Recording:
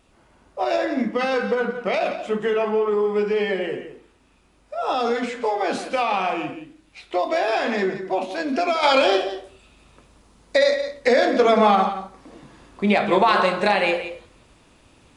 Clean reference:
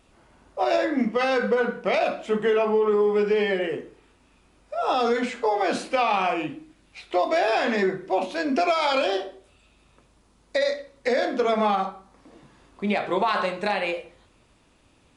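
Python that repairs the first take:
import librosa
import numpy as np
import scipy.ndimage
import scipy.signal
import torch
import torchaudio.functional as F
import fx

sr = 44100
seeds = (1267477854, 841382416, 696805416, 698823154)

y = fx.fix_echo_inverse(x, sr, delay_ms=175, level_db=-11.5)
y = fx.gain(y, sr, db=fx.steps((0.0, 0.0), (8.83, -6.0)))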